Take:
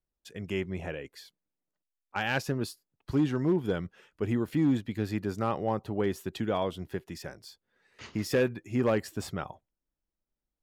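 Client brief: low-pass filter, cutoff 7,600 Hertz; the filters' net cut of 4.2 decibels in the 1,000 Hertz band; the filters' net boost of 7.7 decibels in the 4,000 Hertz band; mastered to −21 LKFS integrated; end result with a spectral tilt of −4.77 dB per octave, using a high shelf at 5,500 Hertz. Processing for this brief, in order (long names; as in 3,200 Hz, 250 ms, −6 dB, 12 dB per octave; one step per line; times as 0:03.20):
low-pass filter 7,600 Hz
parametric band 1,000 Hz −6.5 dB
parametric band 4,000 Hz +9 dB
high-shelf EQ 5,500 Hz +5.5 dB
level +10.5 dB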